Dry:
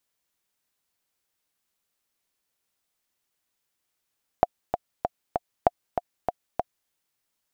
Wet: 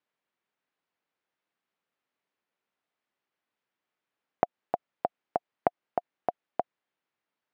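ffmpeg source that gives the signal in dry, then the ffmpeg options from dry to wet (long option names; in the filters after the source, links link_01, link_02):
-f lavfi -i "aevalsrc='pow(10,(-3.5-7.5*gte(mod(t,4*60/194),60/194))/20)*sin(2*PI*709*mod(t,60/194))*exp(-6.91*mod(t,60/194)/0.03)':duration=2.47:sample_rate=44100"
-af "acompressor=threshold=-19dB:ratio=6,highpass=170,lowpass=2400"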